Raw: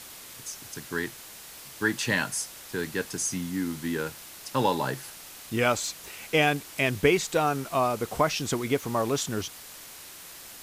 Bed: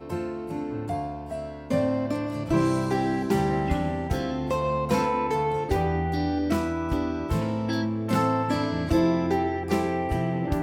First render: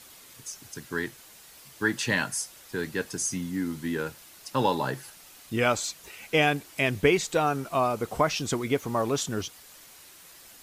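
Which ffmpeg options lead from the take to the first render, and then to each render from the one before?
-af "afftdn=nr=7:nf=-45"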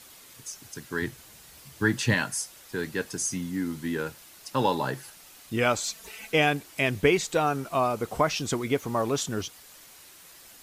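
-filter_complex "[0:a]asettb=1/sr,asplit=3[s0][s1][s2];[s0]atrim=end=1.024[s3];[s1]atrim=start=1.02:end=2.14,asetpts=PTS-STARTPTS,afade=t=in:d=0.004:c=qsin,afade=t=out:st=1.116:d=0.004:c=qsin,equalizer=f=80:t=o:w=2.5:g=11[s4];[s2]atrim=start=2.136[s5];[s3][s4]acrossfade=d=0.004:c1=hsin:c2=qsin[s6];[s6][s5]acrossfade=d=0.004:c1=qsin:c2=hsin,asettb=1/sr,asplit=3[s7][s8][s9];[s7]atrim=end=5.864[s10];[s8]atrim=start=5.86:end=6.32,asetpts=PTS-STARTPTS,afade=t=in:d=0.004:c=qsin,afade=t=out:st=0.456:d=0.004:c=qsin,aecho=1:1:4.5:0.87,atrim=end_sample=20286[s11];[s9]atrim=start=6.316[s12];[s10][s11]acrossfade=d=0.004:c1=hsin:c2=qsin[s13];[s13][s12]acrossfade=d=0.004:c1=qsin:c2=hsin"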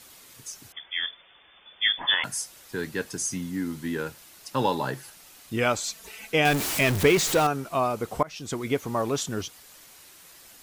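-filter_complex "[0:a]asettb=1/sr,asplit=3[s0][s1][s2];[s0]atrim=end=0.724[s3];[s1]atrim=start=0.72:end=2.24,asetpts=PTS-STARTPTS,afade=t=in:d=0.004:c=qsin,afade=t=out:st=1.516:d=0.004:c=qsin,lowpass=f=3100:t=q:w=0.5098,lowpass=f=3100:t=q:w=0.6013,lowpass=f=3100:t=q:w=0.9,lowpass=f=3100:t=q:w=2.563,afreqshift=-3600[s4];[s2]atrim=start=2.236[s5];[s3][s4]acrossfade=d=0.004:c1=hsin:c2=qsin[s6];[s6][s5]acrossfade=d=0.004:c1=qsin:c2=hsin,asettb=1/sr,asplit=3[s7][s8][s9];[s7]atrim=end=6.454[s10];[s8]atrim=start=6.45:end=7.47,asetpts=PTS-STARTPTS,afade=t=in:d=0.004:c=qsin,afade=t=out:st=1.016:d=0.004:c=qsin,aeval=exprs='val(0)+0.5*0.0668*sgn(val(0))':c=same[s11];[s9]atrim=start=7.466[s12];[s10][s11]acrossfade=d=0.004:c1=hsin:c2=qsin[s13];[s13][s12]acrossfade=d=0.004:c1=qsin:c2=hsin,asplit=2[s14][s15];[s14]atrim=end=8.23,asetpts=PTS-STARTPTS,afade=t=out:st=8.226:d=0.004:c=hsin:silence=0.0749894[s16];[s15]atrim=start=8.23,asetpts=PTS-STARTPTS,afade=t=in:d=0.45:silence=0.0749894[s17];[s16][s17]concat=n=2:v=0:a=1"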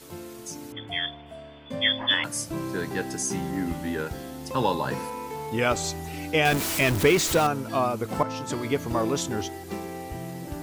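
-filter_complex "[1:a]volume=0.335[s0];[0:a][s0]amix=inputs=2:normalize=0"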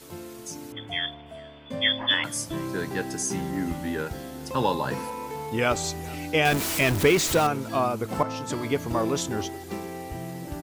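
-filter_complex "[0:a]asplit=2[s0][s1];[s1]adelay=419.8,volume=0.0794,highshelf=f=4000:g=-9.45[s2];[s0][s2]amix=inputs=2:normalize=0"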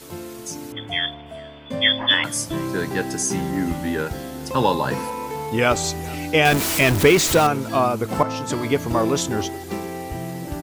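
-af "volume=1.88"

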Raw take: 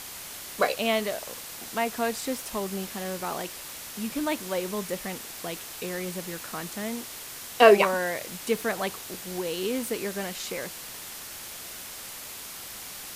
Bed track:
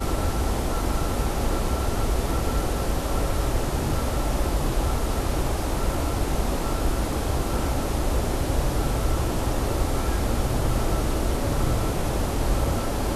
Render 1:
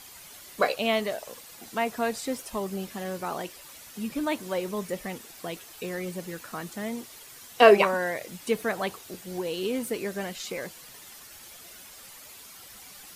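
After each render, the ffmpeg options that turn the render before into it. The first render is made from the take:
-af "afftdn=nr=10:nf=-41"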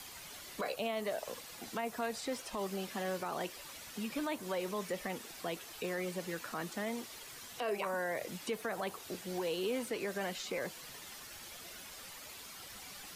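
-filter_complex "[0:a]acrossover=split=170|510|1500|6200[s0][s1][s2][s3][s4];[s0]acompressor=threshold=0.00158:ratio=4[s5];[s1]acompressor=threshold=0.00891:ratio=4[s6];[s2]acompressor=threshold=0.0178:ratio=4[s7];[s3]acompressor=threshold=0.00708:ratio=4[s8];[s4]acompressor=threshold=0.00224:ratio=4[s9];[s5][s6][s7][s8][s9]amix=inputs=5:normalize=0,alimiter=level_in=1.5:limit=0.0631:level=0:latency=1:release=19,volume=0.668"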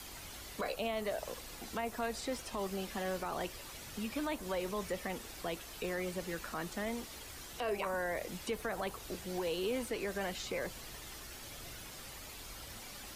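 -filter_complex "[1:a]volume=0.0299[s0];[0:a][s0]amix=inputs=2:normalize=0"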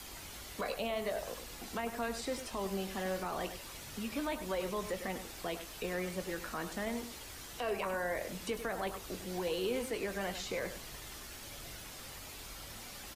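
-filter_complex "[0:a]asplit=2[s0][s1];[s1]adelay=21,volume=0.251[s2];[s0][s2]amix=inputs=2:normalize=0,aecho=1:1:100:0.299"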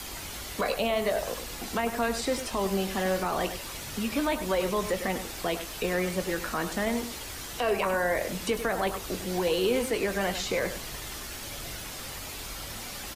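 -af "volume=2.82"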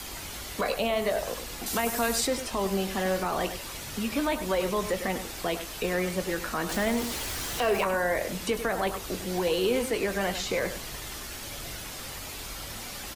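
-filter_complex "[0:a]asettb=1/sr,asplit=3[s0][s1][s2];[s0]atrim=end=1.664[s3];[s1]atrim=start=1.66:end=2.27,asetpts=PTS-STARTPTS,afade=t=in:d=0.004:c=qsin,afade=t=out:st=0.606:d=0.004:c=qsin,highshelf=f=4800:g=11.5[s4];[s2]atrim=start=2.266[s5];[s3][s4]acrossfade=d=0.004:c1=hsin:c2=qsin[s6];[s6][s5]acrossfade=d=0.004:c1=qsin:c2=hsin,asettb=1/sr,asplit=3[s7][s8][s9];[s7]atrim=end=6.694[s10];[s8]atrim=start=6.69:end=7.84,asetpts=PTS-STARTPTS,afade=t=in:d=0.004:c=qsin,afade=t=out:st=1.146:d=0.004:c=qsin,aeval=exprs='val(0)+0.5*0.0224*sgn(val(0))':c=same[s11];[s9]atrim=start=7.836[s12];[s10][s11]acrossfade=d=0.004:c1=hsin:c2=qsin[s13];[s13][s12]acrossfade=d=0.004:c1=qsin:c2=hsin"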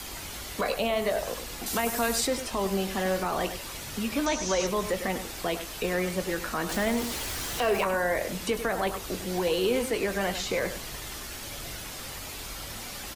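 -filter_complex "[0:a]asettb=1/sr,asplit=3[s0][s1][s2];[s0]atrim=end=4.264[s3];[s1]atrim=start=4.26:end=4.67,asetpts=PTS-STARTPTS,afade=t=in:d=0.004:c=qsin,afade=t=out:st=0.406:d=0.004:c=qsin,lowpass=f=6100:t=q:w=9.1[s4];[s2]atrim=start=4.666[s5];[s3][s4]acrossfade=d=0.004:c1=hsin:c2=qsin[s6];[s6][s5]acrossfade=d=0.004:c1=qsin:c2=hsin"

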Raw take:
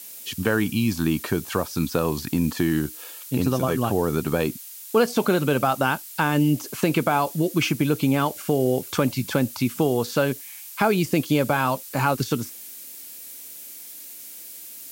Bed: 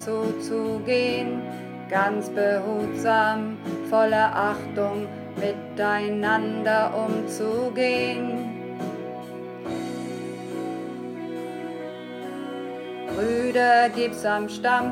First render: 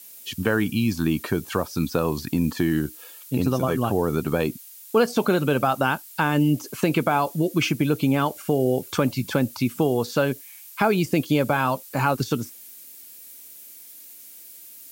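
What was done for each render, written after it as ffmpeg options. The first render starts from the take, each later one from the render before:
-af "afftdn=nr=6:nf=-40"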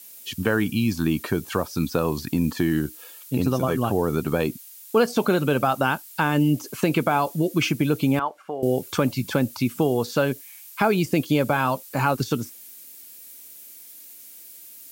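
-filter_complex "[0:a]asettb=1/sr,asplit=3[s0][s1][s2];[s0]atrim=end=8.194[s3];[s1]atrim=start=8.19:end=8.63,asetpts=PTS-STARTPTS,afade=t=in:d=0.004:c=qsin,afade=t=out:st=0.436:d=0.004:c=qsin,bandpass=f=1000:t=q:w=1.4[s4];[s2]atrim=start=8.626[s5];[s3][s4]acrossfade=d=0.004:c1=hsin:c2=qsin[s6];[s6][s5]acrossfade=d=0.004:c1=qsin:c2=hsin"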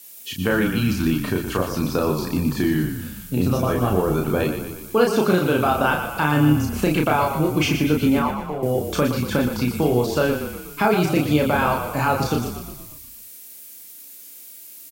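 -filter_complex "[0:a]asplit=2[s0][s1];[s1]adelay=33,volume=0.708[s2];[s0][s2]amix=inputs=2:normalize=0,asplit=8[s3][s4][s5][s6][s7][s8][s9][s10];[s4]adelay=119,afreqshift=-32,volume=0.398[s11];[s5]adelay=238,afreqshift=-64,volume=0.226[s12];[s6]adelay=357,afreqshift=-96,volume=0.129[s13];[s7]adelay=476,afreqshift=-128,volume=0.0741[s14];[s8]adelay=595,afreqshift=-160,volume=0.0422[s15];[s9]adelay=714,afreqshift=-192,volume=0.024[s16];[s10]adelay=833,afreqshift=-224,volume=0.0136[s17];[s3][s11][s12][s13][s14][s15][s16][s17]amix=inputs=8:normalize=0"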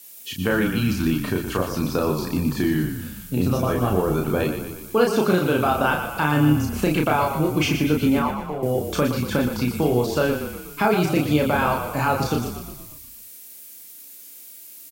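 -af "volume=0.891"

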